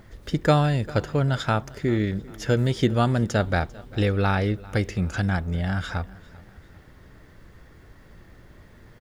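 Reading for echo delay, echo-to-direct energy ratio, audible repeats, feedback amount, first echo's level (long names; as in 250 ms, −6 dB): 396 ms, −20.5 dB, 2, 44%, −21.5 dB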